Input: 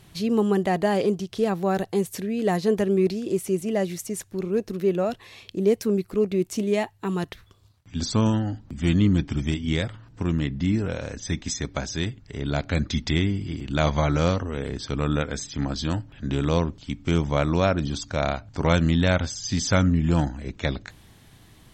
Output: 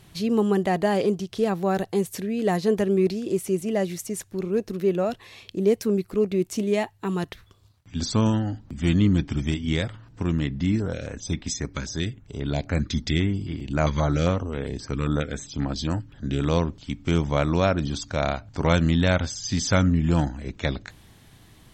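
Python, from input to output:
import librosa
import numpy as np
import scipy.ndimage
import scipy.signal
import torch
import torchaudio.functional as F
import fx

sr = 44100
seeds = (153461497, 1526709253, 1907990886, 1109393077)

y = fx.filter_held_notch(x, sr, hz=7.5, low_hz=700.0, high_hz=6600.0, at=(10.76, 16.39), fade=0.02)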